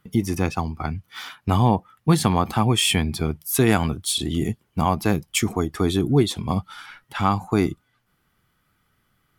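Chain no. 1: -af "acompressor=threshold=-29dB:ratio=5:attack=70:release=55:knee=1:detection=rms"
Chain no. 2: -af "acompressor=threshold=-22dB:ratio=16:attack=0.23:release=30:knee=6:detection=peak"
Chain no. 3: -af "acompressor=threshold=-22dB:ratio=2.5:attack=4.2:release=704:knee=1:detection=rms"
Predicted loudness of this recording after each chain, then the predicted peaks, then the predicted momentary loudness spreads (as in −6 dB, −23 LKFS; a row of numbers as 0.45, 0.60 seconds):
−29.0, −30.5, −29.0 LKFS; −11.5, −18.5, −13.0 dBFS; 7, 6, 8 LU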